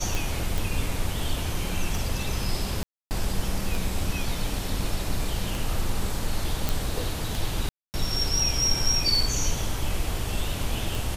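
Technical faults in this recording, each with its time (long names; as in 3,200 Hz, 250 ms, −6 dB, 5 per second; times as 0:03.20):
scratch tick 33 1/3 rpm
0:00.58: click
0:02.83–0:03.11: drop-out 279 ms
0:06.69: click
0:07.69–0:07.94: drop-out 249 ms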